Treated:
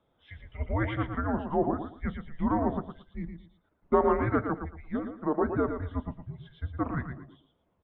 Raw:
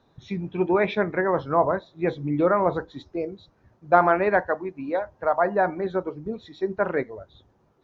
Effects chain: 2.77–3.93 transient shaper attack 0 dB, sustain -5 dB; feedback echo 0.114 s, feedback 24%, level -7.5 dB; mistuned SSB -300 Hz 360–3500 Hz; gain -6 dB

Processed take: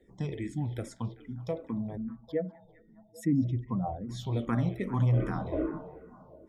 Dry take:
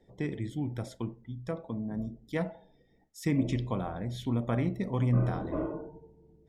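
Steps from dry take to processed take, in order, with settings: 1.97–4.09 spectral contrast raised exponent 1.9; delay with a stepping band-pass 0.198 s, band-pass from 2800 Hz, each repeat -0.7 oct, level -11 dB; endless phaser -2.5 Hz; gain +3.5 dB

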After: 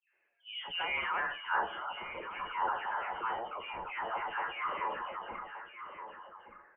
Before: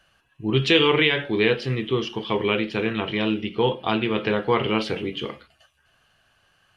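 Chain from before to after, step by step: spectral delay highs late, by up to 0.358 s; band-pass sweep 690 Hz -> 2100 Hz, 0.69–1.65; on a send: echo 1.172 s -14 dB; on the sum: transient shaper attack -4 dB, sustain +5 dB; inverted band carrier 3300 Hz; three-band isolator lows -16 dB, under 490 Hz, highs -17 dB, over 2000 Hz; in parallel at +1 dB: compressor, threshold -50 dBFS, peak gain reduction 20.5 dB; on the sum: low-pass opened by the level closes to 2600 Hz

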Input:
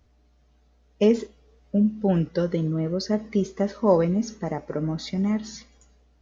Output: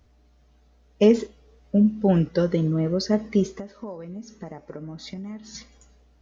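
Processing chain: 3.47–5.55 compressor 10:1, threshold -36 dBFS, peak gain reduction 22.5 dB; gain +2.5 dB

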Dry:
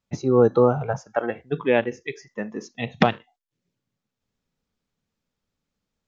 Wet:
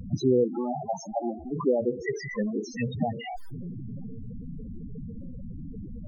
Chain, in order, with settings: zero-crossing step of -27.5 dBFS; limiter -12.5 dBFS, peak gain reduction 9 dB; 0.44–1.56 fixed phaser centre 470 Hz, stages 6; vibrato 10 Hz 6.1 cents; loudest bins only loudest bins 8

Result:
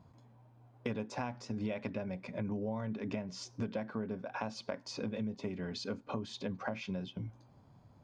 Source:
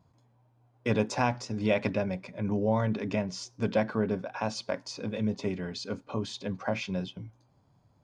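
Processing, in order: bell 230 Hz +4.5 dB 0.23 oct; compressor 6:1, threshold -40 dBFS, peak gain reduction 18.5 dB; high shelf 5700 Hz -8.5 dB; gain +4.5 dB

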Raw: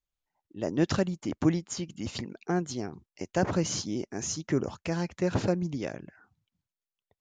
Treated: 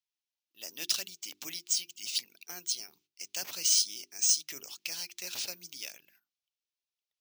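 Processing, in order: gate -53 dBFS, range -15 dB; differentiator; careless resampling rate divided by 3×, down none, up zero stuff; band shelf 3800 Hz +12.5 dB; notches 50/100/150/200/250/300/350/400 Hz

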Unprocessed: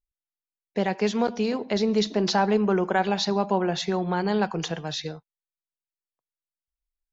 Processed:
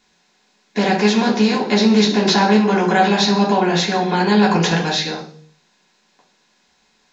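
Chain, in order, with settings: per-bin compression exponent 0.6; 4.48–4.9 transient shaper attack +7 dB, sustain +3 dB; reverb RT60 0.45 s, pre-delay 3 ms, DRR -4 dB; gain +3.5 dB

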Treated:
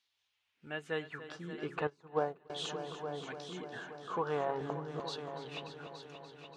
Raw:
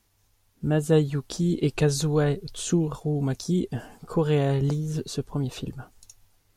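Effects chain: high shelf 4300 Hz -11.5 dB; de-hum 69.51 Hz, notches 6; LFO band-pass saw down 0.4 Hz 700–3800 Hz; on a send: multi-head echo 0.29 s, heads all three, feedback 54%, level -13.5 dB; 1.87–2.5 on the sum: upward expander 2.5:1, over -45 dBFS; gain +3.5 dB

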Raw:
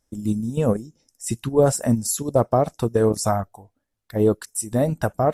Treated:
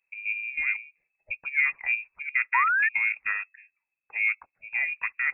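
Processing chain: painted sound fall, 2.54–2.89, 780–1700 Hz -15 dBFS; inverted band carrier 2600 Hz; gain -8 dB

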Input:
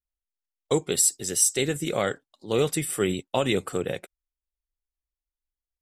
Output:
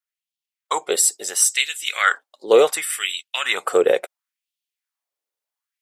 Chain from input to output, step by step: dynamic EQ 1200 Hz, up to +5 dB, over -42 dBFS, Q 0.93; in parallel at -3 dB: vocal rider 0.5 s; on the sum: LFO high-pass sine 0.71 Hz 440–3100 Hz

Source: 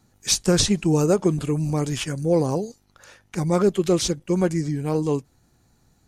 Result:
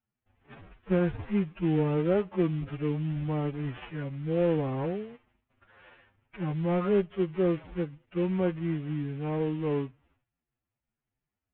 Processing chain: CVSD 16 kbps; gate with hold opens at -49 dBFS; time stretch by phase-locked vocoder 1.9×; gain -6.5 dB

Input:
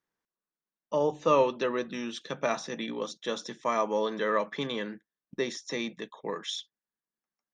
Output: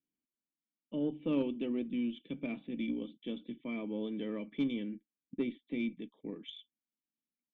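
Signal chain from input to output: vocal tract filter i; added harmonics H 2 -22 dB, 3 -20 dB, 4 -26 dB, 5 -33 dB, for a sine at -27 dBFS; gain +7.5 dB

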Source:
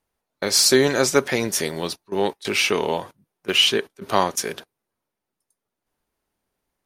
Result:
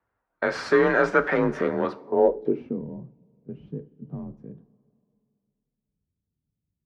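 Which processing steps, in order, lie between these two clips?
1.37–1.85 tilt shelf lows +5.5 dB, about 810 Hz; in parallel at -6 dB: wavefolder -16 dBFS; on the sum: two-slope reverb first 0.32 s, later 2.6 s, from -18 dB, DRR 9.5 dB; frequency shift +34 Hz; low-pass sweep 1500 Hz -> 160 Hz, 1.83–2.87; gain -4.5 dB

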